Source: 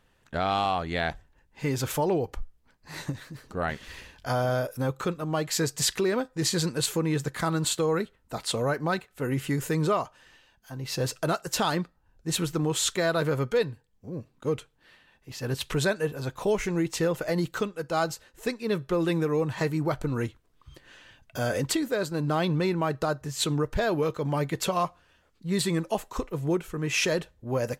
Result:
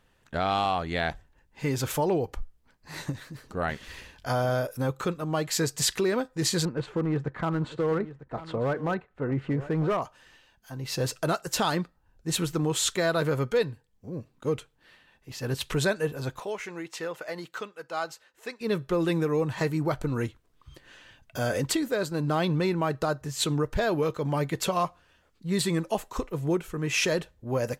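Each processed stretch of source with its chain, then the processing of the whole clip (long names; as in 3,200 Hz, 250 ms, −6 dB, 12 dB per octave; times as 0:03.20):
0:06.65–0:10.02: low-pass filter 1,500 Hz + hard clipping −21.5 dBFS + single-tap delay 949 ms −15.5 dB
0:16.40–0:18.61: high-pass filter 1,100 Hz 6 dB per octave + high-shelf EQ 4,200 Hz −10.5 dB
whole clip: no processing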